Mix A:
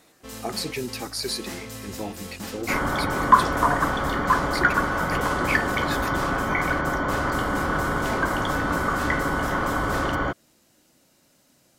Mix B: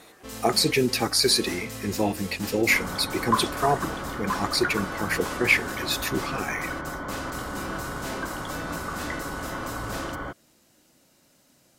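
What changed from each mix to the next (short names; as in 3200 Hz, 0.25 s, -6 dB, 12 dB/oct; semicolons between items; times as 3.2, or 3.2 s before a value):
speech +8.5 dB; second sound -9.0 dB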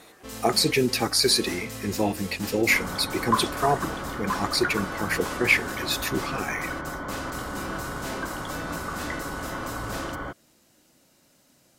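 none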